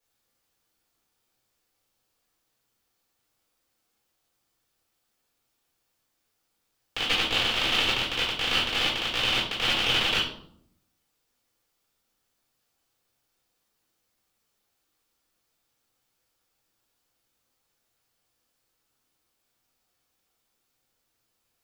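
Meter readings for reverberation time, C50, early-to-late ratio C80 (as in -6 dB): 0.65 s, 4.5 dB, 8.5 dB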